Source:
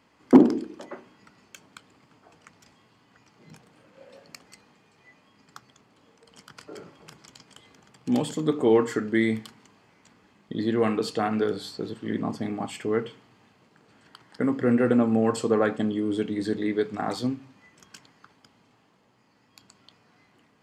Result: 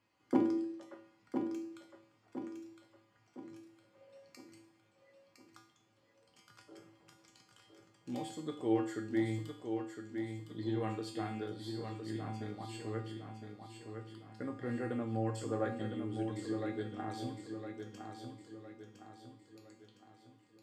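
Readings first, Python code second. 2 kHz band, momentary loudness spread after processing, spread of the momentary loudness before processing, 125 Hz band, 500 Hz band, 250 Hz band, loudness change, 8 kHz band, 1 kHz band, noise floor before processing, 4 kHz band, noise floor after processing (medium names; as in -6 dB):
-13.5 dB, 21 LU, 18 LU, -6.5 dB, -14.0 dB, -12.5 dB, -14.5 dB, -12.0 dB, -11.0 dB, -63 dBFS, -12.0 dB, -71 dBFS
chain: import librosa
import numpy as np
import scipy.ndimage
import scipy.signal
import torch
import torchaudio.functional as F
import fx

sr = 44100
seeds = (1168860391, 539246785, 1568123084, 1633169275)

y = fx.comb_fb(x, sr, f0_hz=110.0, decay_s=0.5, harmonics='odd', damping=0.0, mix_pct=90)
y = fx.echo_feedback(y, sr, ms=1010, feedback_pct=45, wet_db=-6.5)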